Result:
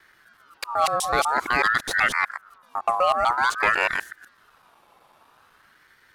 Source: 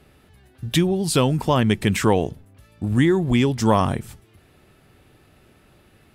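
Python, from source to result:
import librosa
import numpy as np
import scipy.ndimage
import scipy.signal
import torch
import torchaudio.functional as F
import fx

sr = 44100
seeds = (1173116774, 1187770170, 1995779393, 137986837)

y = fx.local_reverse(x, sr, ms=125.0)
y = np.clip(y, -10.0 ** (-10.0 / 20.0), 10.0 ** (-10.0 / 20.0))
y = fx.ring_lfo(y, sr, carrier_hz=1300.0, swing_pct=30, hz=0.5)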